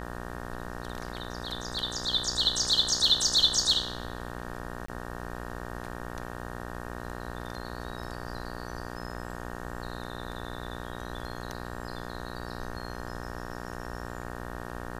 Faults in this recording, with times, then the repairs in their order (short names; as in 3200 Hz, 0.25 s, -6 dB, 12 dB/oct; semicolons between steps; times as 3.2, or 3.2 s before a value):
buzz 60 Hz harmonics 31 -39 dBFS
4.86–4.88 gap 24 ms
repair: de-hum 60 Hz, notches 31; interpolate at 4.86, 24 ms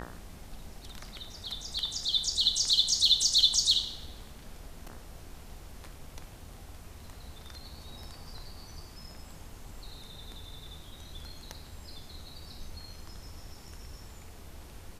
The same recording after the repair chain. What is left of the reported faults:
none